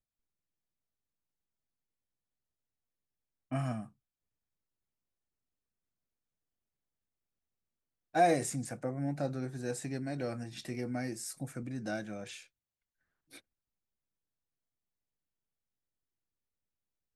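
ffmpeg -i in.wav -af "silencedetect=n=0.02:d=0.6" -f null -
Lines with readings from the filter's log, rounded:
silence_start: 0.00
silence_end: 3.52 | silence_duration: 3.52
silence_start: 3.80
silence_end: 8.15 | silence_duration: 4.35
silence_start: 12.24
silence_end: 17.15 | silence_duration: 4.92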